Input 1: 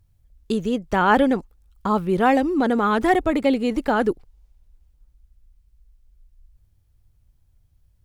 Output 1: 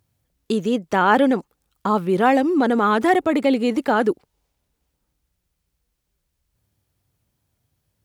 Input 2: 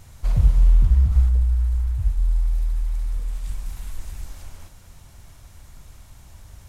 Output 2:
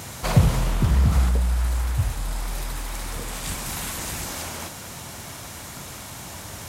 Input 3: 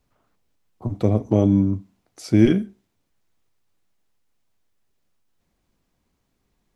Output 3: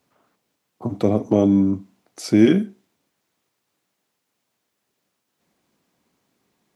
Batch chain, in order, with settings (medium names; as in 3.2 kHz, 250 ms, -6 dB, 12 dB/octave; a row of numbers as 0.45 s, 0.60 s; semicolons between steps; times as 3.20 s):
in parallel at -2.5 dB: peak limiter -15.5 dBFS; on the sum: high-pass 180 Hz 12 dB/octave; peak normalisation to -3 dBFS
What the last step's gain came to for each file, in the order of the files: -1.5 dB, +12.0 dB, +0.5 dB